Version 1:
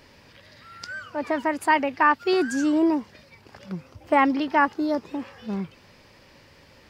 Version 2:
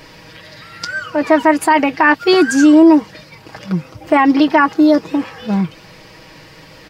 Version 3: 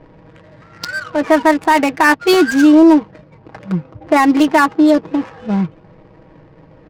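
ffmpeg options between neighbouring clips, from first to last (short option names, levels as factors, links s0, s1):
-af "aecho=1:1:6.3:0.66,alimiter=level_in=4.22:limit=0.891:release=50:level=0:latency=1,volume=0.891"
-af "adynamicsmooth=sensitivity=2.5:basefreq=510"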